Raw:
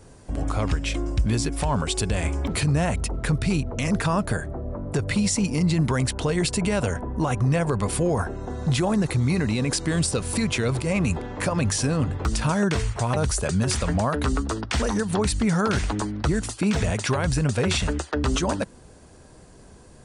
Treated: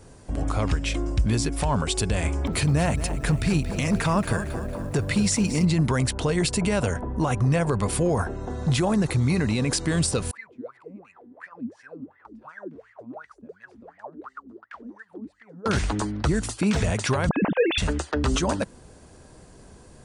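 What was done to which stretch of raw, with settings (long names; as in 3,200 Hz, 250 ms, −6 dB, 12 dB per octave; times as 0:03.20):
0:02.30–0:05.65: feedback echo at a low word length 228 ms, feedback 55%, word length 8 bits, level −11.5 dB
0:10.31–0:15.66: LFO wah 2.8 Hz 230–2,000 Hz, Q 17
0:17.29–0:17.78: three sine waves on the formant tracks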